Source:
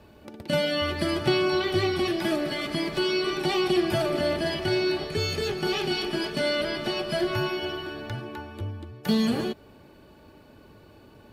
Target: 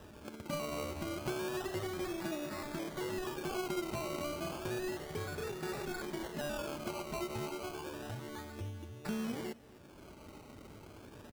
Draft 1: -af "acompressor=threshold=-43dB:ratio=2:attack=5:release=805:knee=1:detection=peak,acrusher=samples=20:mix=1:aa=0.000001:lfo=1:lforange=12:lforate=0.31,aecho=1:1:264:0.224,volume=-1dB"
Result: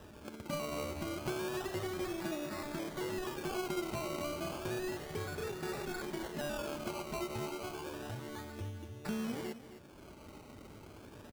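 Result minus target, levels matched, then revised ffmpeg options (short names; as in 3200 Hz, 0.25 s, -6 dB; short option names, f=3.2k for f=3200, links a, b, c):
echo-to-direct +8.5 dB
-af "acompressor=threshold=-43dB:ratio=2:attack=5:release=805:knee=1:detection=peak,acrusher=samples=20:mix=1:aa=0.000001:lfo=1:lforange=12:lforate=0.31,aecho=1:1:264:0.0841,volume=-1dB"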